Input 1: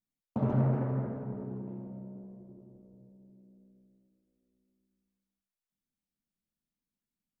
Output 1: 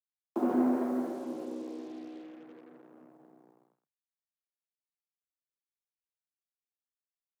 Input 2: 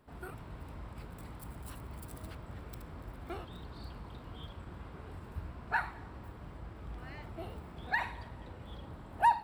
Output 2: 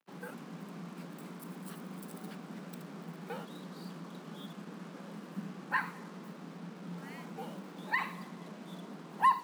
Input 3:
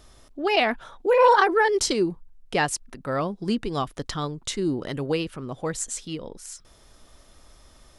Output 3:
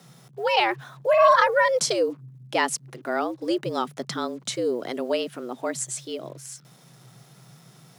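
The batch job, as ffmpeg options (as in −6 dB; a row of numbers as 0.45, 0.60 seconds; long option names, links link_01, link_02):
-af "acrusher=bits=8:mix=0:aa=0.5,afreqshift=120"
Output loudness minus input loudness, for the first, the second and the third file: +0.5, +0.5, 0.0 LU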